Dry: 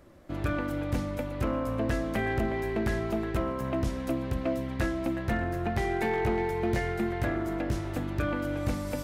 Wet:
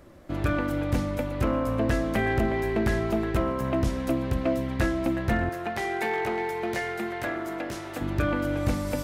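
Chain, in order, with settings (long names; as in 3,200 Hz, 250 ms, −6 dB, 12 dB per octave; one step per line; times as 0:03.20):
0:05.49–0:08.01: high-pass filter 590 Hz 6 dB per octave
level +4 dB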